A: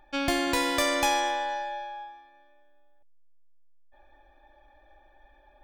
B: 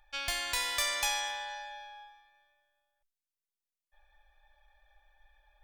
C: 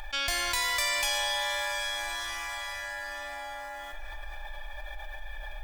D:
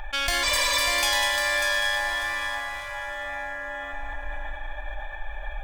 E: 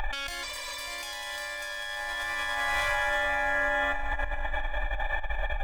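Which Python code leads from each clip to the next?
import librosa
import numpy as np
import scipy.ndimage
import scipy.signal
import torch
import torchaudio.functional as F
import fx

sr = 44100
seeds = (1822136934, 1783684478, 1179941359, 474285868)

y1 = fx.tone_stack(x, sr, knobs='10-0-10')
y2 = y1 + 0.36 * np.pad(y1, (int(3.0 * sr / 1000.0), 0))[:len(y1)]
y2 = fx.rev_plate(y2, sr, seeds[0], rt60_s=4.9, hf_ratio=0.7, predelay_ms=0, drr_db=6.5)
y2 = fx.env_flatten(y2, sr, amount_pct=70)
y3 = fx.wiener(y2, sr, points=9)
y3 = fx.echo_heads(y3, sr, ms=198, heads='first and third', feedback_pct=40, wet_db=-7)
y3 = fx.spec_repair(y3, sr, seeds[1], start_s=0.46, length_s=0.31, low_hz=310.0, high_hz=8600.0, source='after')
y3 = F.gain(torch.from_numpy(y3), 5.5).numpy()
y4 = fx.over_compress(y3, sr, threshold_db=-34.0, ratio=-1.0)
y4 = F.gain(torch.from_numpy(y4), 2.5).numpy()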